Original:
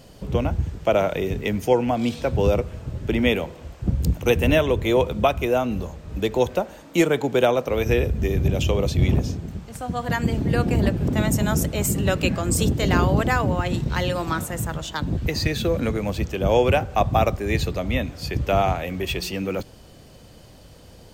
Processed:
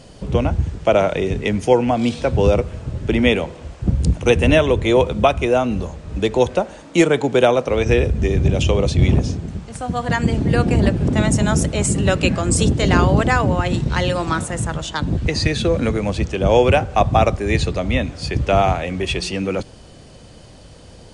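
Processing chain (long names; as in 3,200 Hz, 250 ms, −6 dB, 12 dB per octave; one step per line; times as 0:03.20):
linear-phase brick-wall low-pass 11,000 Hz
level +4.5 dB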